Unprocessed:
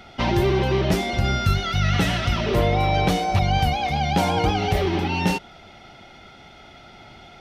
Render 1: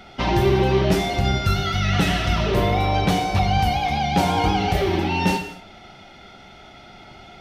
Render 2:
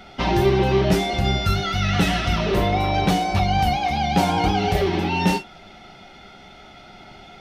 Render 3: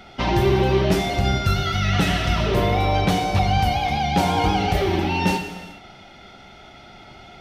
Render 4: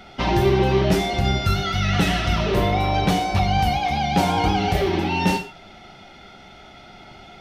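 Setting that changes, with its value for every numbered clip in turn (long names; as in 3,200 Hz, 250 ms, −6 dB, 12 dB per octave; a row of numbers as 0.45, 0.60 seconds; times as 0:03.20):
reverb whose tail is shaped and stops, gate: 280, 80, 450, 160 milliseconds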